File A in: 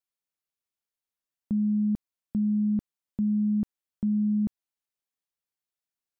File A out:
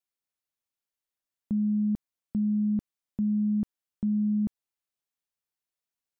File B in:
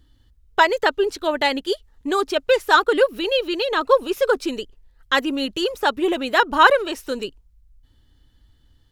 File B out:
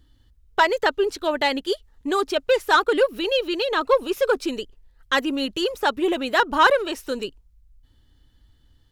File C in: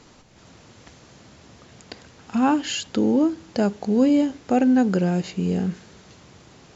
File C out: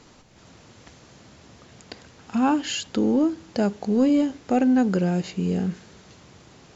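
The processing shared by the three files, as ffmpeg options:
ffmpeg -i in.wav -af "acontrast=40,volume=-6.5dB" out.wav

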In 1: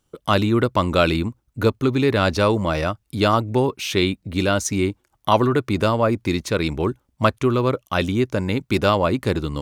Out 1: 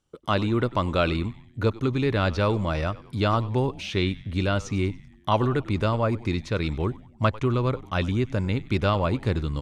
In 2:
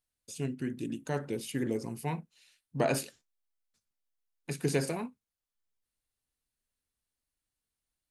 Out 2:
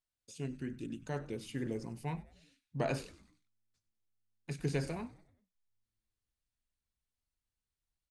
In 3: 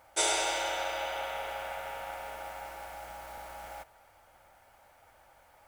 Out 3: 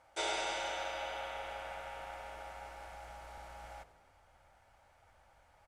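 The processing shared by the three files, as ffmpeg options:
ffmpeg -i in.wav -filter_complex "[0:a]acrossover=split=4700[link_01][link_02];[link_02]acompressor=threshold=-41dB:ratio=4:attack=1:release=60[link_03];[link_01][link_03]amix=inputs=2:normalize=0,lowpass=8400,asubboost=boost=2:cutoff=180,asplit=5[link_04][link_05][link_06][link_07][link_08];[link_05]adelay=96,afreqshift=-110,volume=-18.5dB[link_09];[link_06]adelay=192,afreqshift=-220,volume=-24.3dB[link_10];[link_07]adelay=288,afreqshift=-330,volume=-30.2dB[link_11];[link_08]adelay=384,afreqshift=-440,volume=-36dB[link_12];[link_04][link_09][link_10][link_11][link_12]amix=inputs=5:normalize=0,volume=-5.5dB" out.wav

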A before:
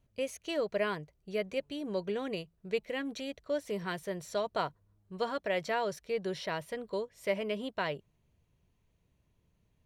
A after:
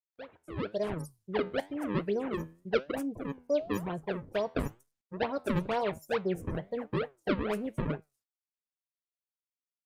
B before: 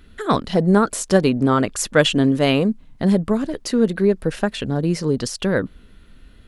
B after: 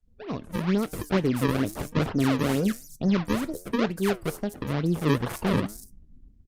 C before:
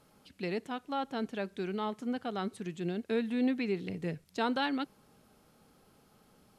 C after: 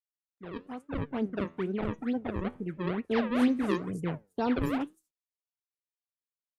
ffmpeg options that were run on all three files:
ffmpeg -i in.wav -filter_complex "[0:a]equalizer=frequency=2000:width_type=o:width=1.5:gain=-12.5,acrossover=split=430|1500[link_01][link_02][link_03];[link_02]volume=24.5dB,asoftclip=hard,volume=-24.5dB[link_04];[link_01][link_04][link_03]amix=inputs=3:normalize=0,agate=range=-33dB:threshold=-44dB:ratio=3:detection=peak,acrusher=samples=35:mix=1:aa=0.000001:lfo=1:lforange=56:lforate=2.2,acrossover=split=5600[link_05][link_06];[link_06]adelay=240[link_07];[link_05][link_07]amix=inputs=2:normalize=0,adynamicequalizer=threshold=0.00794:dfrequency=110:dqfactor=2.6:tfrequency=110:tqfactor=2.6:attack=5:release=100:ratio=0.375:range=2:mode=boostabove:tftype=bell,afftdn=noise_reduction=32:noise_floor=-47,dynaudnorm=framelen=160:gausssize=9:maxgain=16dB,aresample=32000,aresample=44100,flanger=delay=6.2:depth=6.1:regen=83:speed=1:shape=sinusoidal,volume=-7dB" -ar 48000 -c:a libopus -b:a 32k out.opus

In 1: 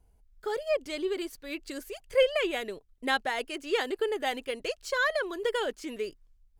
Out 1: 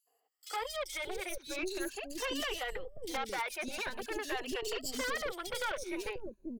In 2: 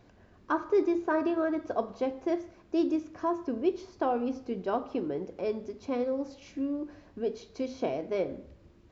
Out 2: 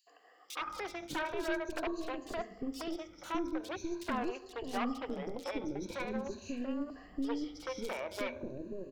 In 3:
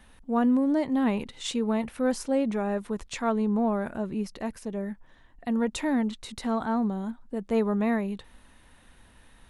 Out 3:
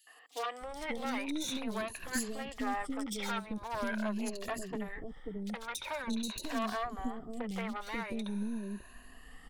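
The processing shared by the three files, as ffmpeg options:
ffmpeg -i in.wav -filter_complex "[0:a]afftfilt=real='re*pow(10,17/40*sin(2*PI*(1.5*log(max(b,1)*sr/1024/100)/log(2)-(0.44)*(pts-256)/sr)))':imag='im*pow(10,17/40*sin(2*PI*(1.5*log(max(b,1)*sr/1024/100)/log(2)-(0.44)*(pts-256)/sr)))':win_size=1024:overlap=0.75,equalizer=frequency=120:width_type=o:width=1.7:gain=-4.5,acrossover=split=1300[link_01][link_02];[link_01]acompressor=threshold=-32dB:ratio=16[link_03];[link_02]alimiter=level_in=2.5dB:limit=-24dB:level=0:latency=1:release=175,volume=-2.5dB[link_04];[link_03][link_04]amix=inputs=2:normalize=0,aeval=exprs='0.0376*(abs(mod(val(0)/0.0376+3,4)-2)-1)':channel_layout=same,aeval=exprs='0.0398*(cos(1*acos(clip(val(0)/0.0398,-1,1)))-cos(1*PI/2))+0.0158*(cos(2*acos(clip(val(0)/0.0398,-1,1)))-cos(2*PI/2))+0.002*(cos(4*acos(clip(val(0)/0.0398,-1,1)))-cos(4*PI/2))':channel_layout=same,acrossover=split=450|3600[link_05][link_06][link_07];[link_06]adelay=70[link_08];[link_05]adelay=610[link_09];[link_09][link_08][link_07]amix=inputs=3:normalize=0" -ar 48000 -c:a aac -b:a 192k out.aac

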